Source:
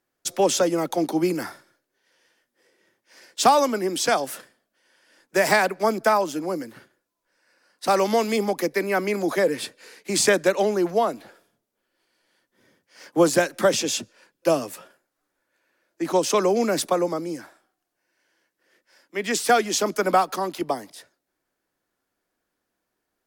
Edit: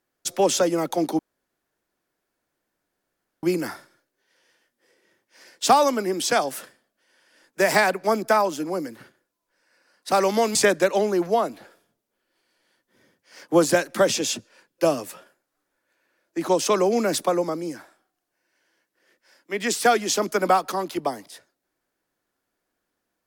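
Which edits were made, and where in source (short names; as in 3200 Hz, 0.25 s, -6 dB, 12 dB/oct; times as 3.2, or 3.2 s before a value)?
1.19 insert room tone 2.24 s
8.31–10.19 cut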